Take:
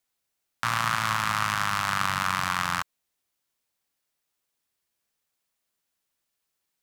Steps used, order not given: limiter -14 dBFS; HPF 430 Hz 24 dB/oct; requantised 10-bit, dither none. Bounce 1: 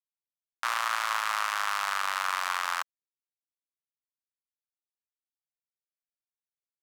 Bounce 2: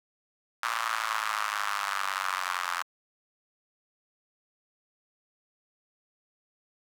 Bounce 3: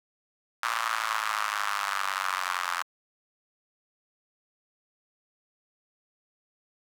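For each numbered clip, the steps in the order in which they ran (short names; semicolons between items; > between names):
HPF > requantised > limiter; limiter > HPF > requantised; HPF > limiter > requantised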